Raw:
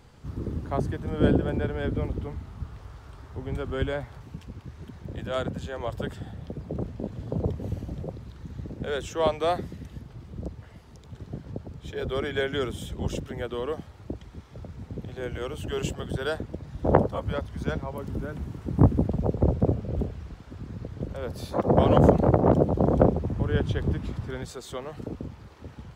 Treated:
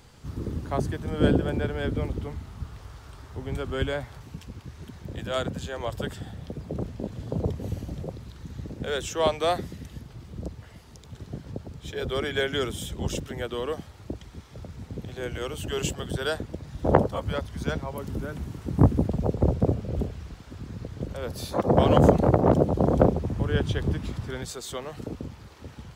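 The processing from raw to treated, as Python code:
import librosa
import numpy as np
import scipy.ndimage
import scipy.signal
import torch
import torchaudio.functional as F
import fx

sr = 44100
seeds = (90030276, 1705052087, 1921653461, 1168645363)

y = fx.high_shelf(x, sr, hz=2800.0, db=8.0)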